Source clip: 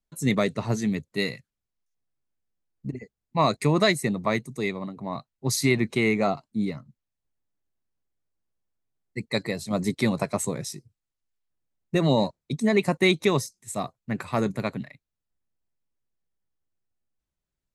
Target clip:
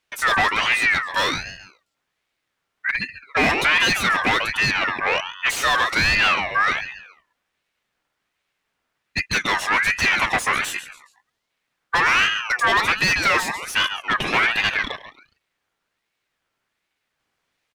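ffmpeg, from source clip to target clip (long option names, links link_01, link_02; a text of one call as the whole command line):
ffmpeg -i in.wav -filter_complex "[0:a]asplit=4[link_01][link_02][link_03][link_04];[link_02]adelay=138,afreqshift=73,volume=-18.5dB[link_05];[link_03]adelay=276,afreqshift=146,volume=-27.9dB[link_06];[link_04]adelay=414,afreqshift=219,volume=-37.2dB[link_07];[link_01][link_05][link_06][link_07]amix=inputs=4:normalize=0,asplit=2[link_08][link_09];[link_09]highpass=frequency=720:poles=1,volume=32dB,asoftclip=type=tanh:threshold=-7dB[link_10];[link_08][link_10]amix=inputs=2:normalize=0,lowpass=frequency=1700:poles=1,volume=-6dB,aeval=exprs='val(0)*sin(2*PI*1800*n/s+1800*0.25/1.3*sin(2*PI*1.3*n/s))':channel_layout=same" out.wav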